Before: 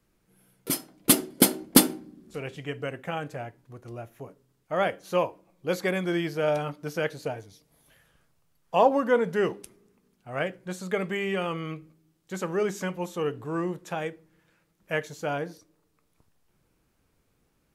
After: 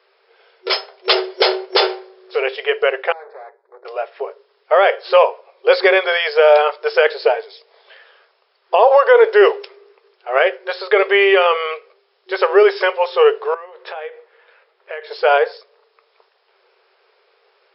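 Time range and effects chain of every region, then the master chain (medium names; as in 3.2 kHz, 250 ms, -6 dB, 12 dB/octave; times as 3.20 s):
3.12–3.85 s: valve stage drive 47 dB, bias 0.75 + Butterworth band-stop 2.9 kHz, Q 1.7 + tape spacing loss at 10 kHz 43 dB
13.54–15.11 s: distance through air 160 m + compression 8:1, threshold -42 dBFS + doubling 19 ms -14 dB
whole clip: FFT band-pass 370–5400 Hz; loudness maximiser +19 dB; trim -1 dB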